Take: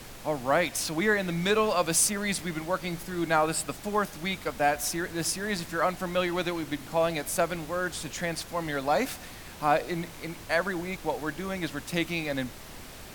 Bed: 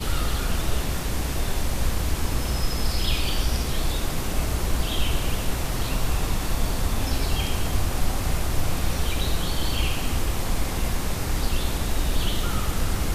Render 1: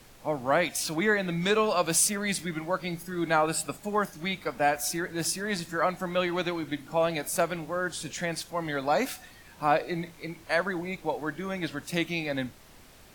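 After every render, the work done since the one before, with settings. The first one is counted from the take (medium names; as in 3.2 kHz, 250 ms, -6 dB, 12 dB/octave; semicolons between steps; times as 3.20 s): noise print and reduce 9 dB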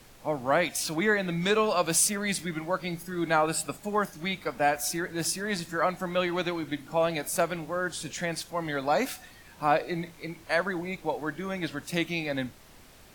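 no audible change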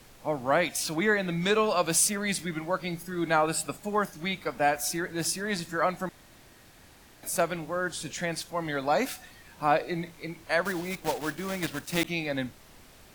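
6.09–7.23 s: room tone; 10.65–12.06 s: block-companded coder 3-bit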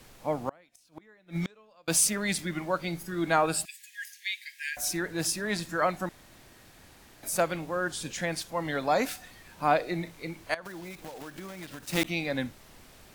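0.49–1.88 s: inverted gate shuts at -20 dBFS, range -33 dB; 3.65–4.77 s: brick-wall FIR high-pass 1.6 kHz; 10.54–11.83 s: compression 16:1, threshold -37 dBFS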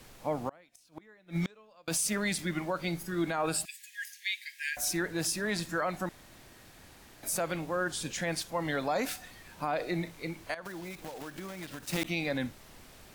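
peak limiter -21 dBFS, peak gain reduction 11 dB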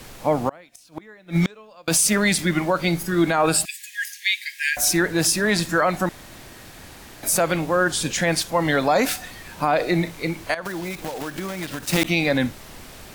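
trim +12 dB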